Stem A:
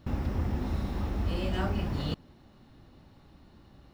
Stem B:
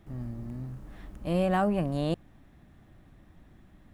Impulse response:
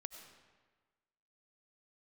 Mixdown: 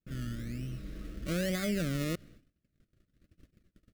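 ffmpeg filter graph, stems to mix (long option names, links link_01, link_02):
-filter_complex "[0:a]aecho=1:1:6.3:1,volume=-16.5dB,asplit=2[link_01][link_02];[link_02]volume=-5.5dB[link_03];[1:a]acrusher=samples=22:mix=1:aa=0.000001:lfo=1:lforange=13.2:lforate=1.1,adelay=13,volume=-1.5dB,asplit=3[link_04][link_05][link_06];[link_05]volume=-19.5dB[link_07];[link_06]apad=whole_len=173892[link_08];[link_01][link_08]sidechaincompress=threshold=-40dB:ratio=8:attack=16:release=300[link_09];[2:a]atrim=start_sample=2205[link_10];[link_03][link_07]amix=inputs=2:normalize=0[link_11];[link_11][link_10]afir=irnorm=-1:irlink=0[link_12];[link_09][link_04][link_12]amix=inputs=3:normalize=0,agate=range=-28dB:threshold=-52dB:ratio=16:detection=peak,asuperstop=centerf=880:order=4:qfactor=1.3,alimiter=limit=-23dB:level=0:latency=1:release=75"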